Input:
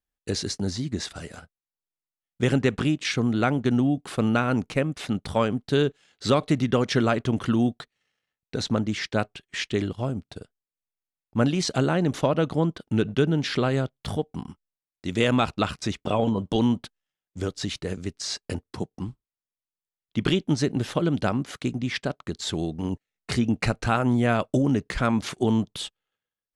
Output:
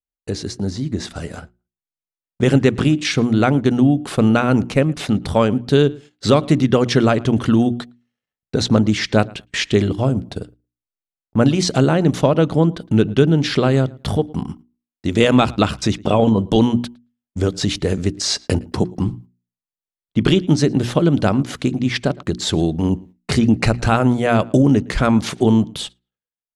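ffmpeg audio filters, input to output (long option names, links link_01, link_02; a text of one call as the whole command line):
ffmpeg -i in.wav -filter_complex "[0:a]asplit=2[link_01][link_02];[link_02]acompressor=threshold=-34dB:ratio=6,volume=-2.5dB[link_03];[link_01][link_03]amix=inputs=2:normalize=0,tiltshelf=frequency=1100:gain=4,asplit=2[link_04][link_05];[link_05]adelay=112,lowpass=frequency=3600:poles=1,volume=-23.5dB,asplit=2[link_06][link_07];[link_07]adelay=112,lowpass=frequency=3600:poles=1,volume=0.2[link_08];[link_04][link_06][link_08]amix=inputs=3:normalize=0,dynaudnorm=framelen=210:gausssize=11:maxgain=11.5dB,agate=range=-15dB:threshold=-36dB:ratio=16:detection=peak,bandreject=frequency=60:width_type=h:width=6,bandreject=frequency=120:width_type=h:width=6,bandreject=frequency=180:width_type=h:width=6,bandreject=frequency=240:width_type=h:width=6,bandreject=frequency=300:width_type=h:width=6,bandreject=frequency=360:width_type=h:width=6,adynamicequalizer=threshold=0.0251:dfrequency=2400:dqfactor=0.7:tfrequency=2400:tqfactor=0.7:attack=5:release=100:ratio=0.375:range=2.5:mode=boostabove:tftype=highshelf,volume=-1dB" out.wav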